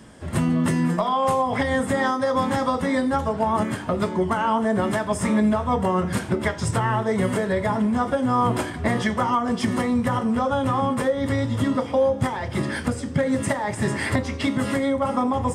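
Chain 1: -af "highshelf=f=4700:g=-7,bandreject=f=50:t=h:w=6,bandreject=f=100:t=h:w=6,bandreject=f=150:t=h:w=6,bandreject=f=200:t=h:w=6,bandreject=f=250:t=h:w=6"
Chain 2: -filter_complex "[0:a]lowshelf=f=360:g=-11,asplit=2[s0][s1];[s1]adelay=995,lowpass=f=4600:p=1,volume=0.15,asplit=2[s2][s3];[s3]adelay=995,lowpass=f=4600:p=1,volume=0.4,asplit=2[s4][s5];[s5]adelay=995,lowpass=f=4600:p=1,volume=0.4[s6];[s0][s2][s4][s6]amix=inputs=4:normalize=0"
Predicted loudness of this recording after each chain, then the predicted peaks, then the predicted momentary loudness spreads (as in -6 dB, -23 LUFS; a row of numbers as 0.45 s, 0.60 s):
-23.5 LUFS, -26.5 LUFS; -8.5 dBFS, -10.5 dBFS; 4 LU, 5 LU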